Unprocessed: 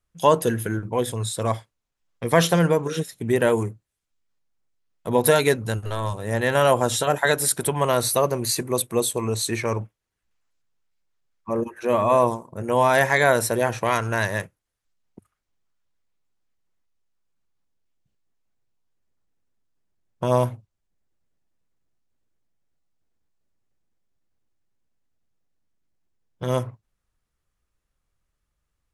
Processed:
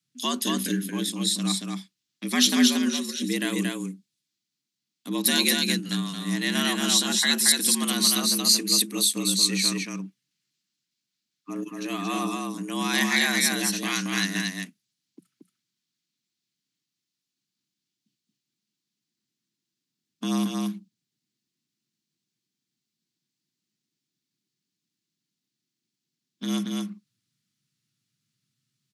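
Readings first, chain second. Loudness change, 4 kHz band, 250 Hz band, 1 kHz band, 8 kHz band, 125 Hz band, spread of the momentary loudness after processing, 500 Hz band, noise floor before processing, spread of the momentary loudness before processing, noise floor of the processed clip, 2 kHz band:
−1.0 dB, +9.0 dB, +2.5 dB, −10.5 dB, +4.5 dB, −9.0 dB, 16 LU, −15.5 dB, −80 dBFS, 11 LU, −85 dBFS, −2.0 dB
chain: high-pass filter 48 Hz 12 dB per octave
parametric band 130 Hz +3.5 dB 0.26 octaves
on a send: single-tap delay 228 ms −3 dB
on the sum: frequency shifter +81 Hz
drawn EQ curve 340 Hz 0 dB, 540 Hz −21 dB, 4,400 Hz +12 dB, 9,800 Hz +3 dB
level −2.5 dB

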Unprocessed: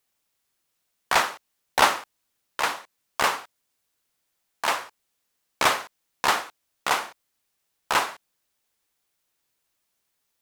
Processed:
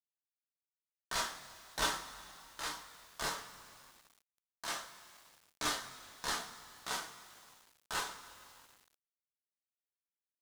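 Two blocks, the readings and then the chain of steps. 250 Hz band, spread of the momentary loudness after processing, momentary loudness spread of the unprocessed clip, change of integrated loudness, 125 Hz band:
−10.5 dB, 20 LU, 16 LU, −14.5 dB, −8.5 dB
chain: guitar amp tone stack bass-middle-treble 6-0-2
multi-voice chorus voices 4, 0.37 Hz, delay 26 ms, depth 4.1 ms
graphic EQ with 15 bands 630 Hz +6 dB, 2,500 Hz −10 dB, 16,000 Hz −10 dB
coupled-rooms reverb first 0.21 s, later 2.9 s, from −19 dB, DRR 1.5 dB
log-companded quantiser 6 bits
level +9.5 dB

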